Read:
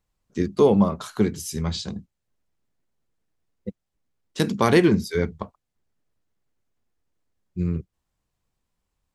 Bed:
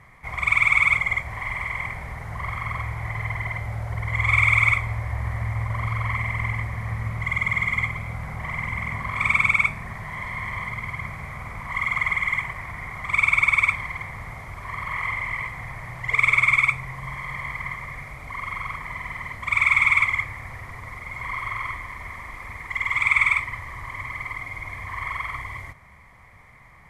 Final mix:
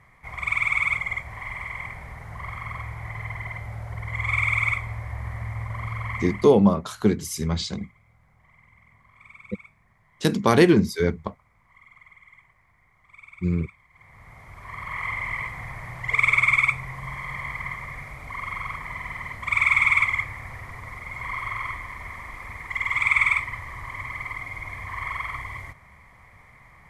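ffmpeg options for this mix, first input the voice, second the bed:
-filter_complex "[0:a]adelay=5850,volume=1dB[a];[1:a]volume=22dB,afade=t=out:st=6.25:d=0.27:silence=0.0707946,afade=t=in:st=13.91:d=1.37:silence=0.0446684[b];[a][b]amix=inputs=2:normalize=0"

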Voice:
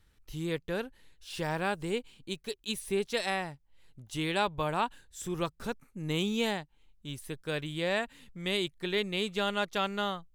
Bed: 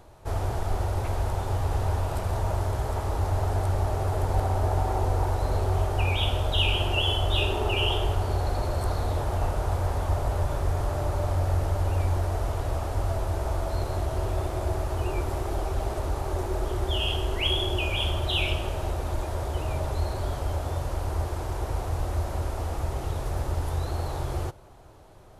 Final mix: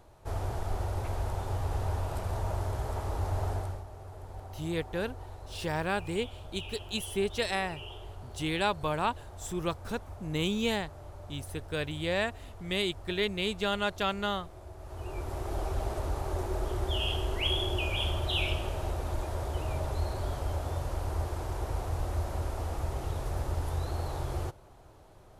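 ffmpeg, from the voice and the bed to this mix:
-filter_complex "[0:a]adelay=4250,volume=0.5dB[a];[1:a]volume=9.5dB,afade=t=out:st=3.49:d=0.35:silence=0.211349,afade=t=in:st=14.77:d=0.88:silence=0.177828[b];[a][b]amix=inputs=2:normalize=0"

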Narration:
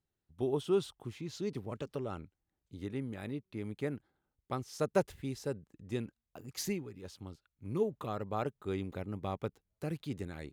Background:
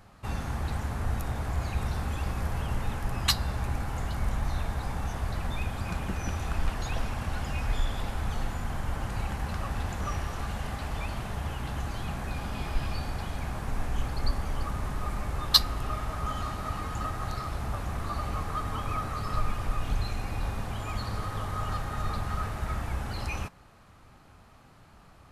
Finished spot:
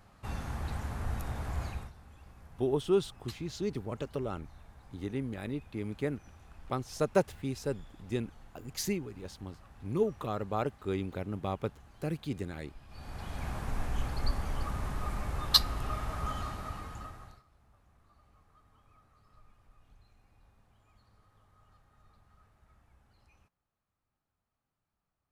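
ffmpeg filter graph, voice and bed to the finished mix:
-filter_complex "[0:a]adelay=2200,volume=3dB[a];[1:a]volume=15dB,afade=t=out:st=1.64:d=0.28:silence=0.125893,afade=t=in:st=12.88:d=0.6:silence=0.1,afade=t=out:st=16.27:d=1.16:silence=0.0334965[b];[a][b]amix=inputs=2:normalize=0"

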